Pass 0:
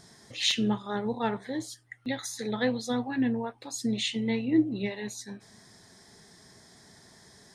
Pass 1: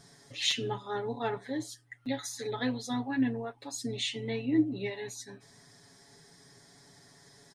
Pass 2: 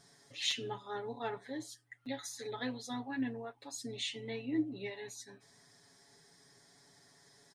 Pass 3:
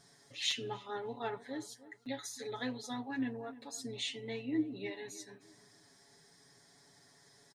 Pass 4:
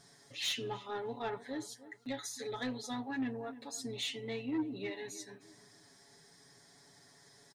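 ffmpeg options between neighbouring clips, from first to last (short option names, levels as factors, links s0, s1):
-af "aecho=1:1:7.1:0.88,volume=0.562"
-af "lowshelf=f=250:g=-6,volume=0.562"
-filter_complex "[0:a]asplit=2[s0][s1];[s1]adelay=304,lowpass=f=1400:p=1,volume=0.158,asplit=2[s2][s3];[s3]adelay=304,lowpass=f=1400:p=1,volume=0.4,asplit=2[s4][s5];[s5]adelay=304,lowpass=f=1400:p=1,volume=0.4,asplit=2[s6][s7];[s7]adelay=304,lowpass=f=1400:p=1,volume=0.4[s8];[s0][s2][s4][s6][s8]amix=inputs=5:normalize=0"
-af "asoftclip=type=tanh:threshold=0.0282,volume=1.26"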